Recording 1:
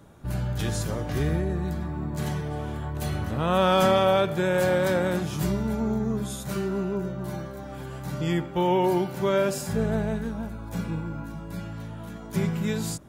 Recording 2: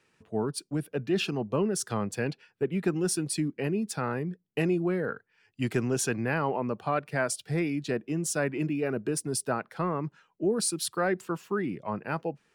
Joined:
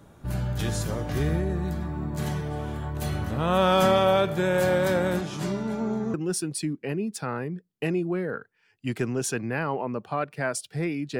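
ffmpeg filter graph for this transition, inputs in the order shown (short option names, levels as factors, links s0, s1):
-filter_complex "[0:a]asettb=1/sr,asplit=3[s0][s1][s2];[s0]atrim=end=5.214[s3];[s1]atrim=start=5.21:end=6.14,asetpts=PTS-STARTPTS,afade=t=in:d=0.004:c=qsin,afade=t=out:st=0.926:d=0.004:c=qsin,highpass=180,lowpass=7500[s4];[s2]atrim=start=6.136[s5];[s3][s4]acrossfade=d=0.004:c1=hsin:c2=qsin[s6];[s6][s5]acrossfade=d=0.004:c1=qsin:c2=hsin,apad=whole_dur=11.19,atrim=end=11.19,atrim=end=6.142[s7];[1:a]atrim=start=2.888:end=7.94[s8];[s7][s8]acrossfade=d=0.004:c1=hsin:c2=hsin"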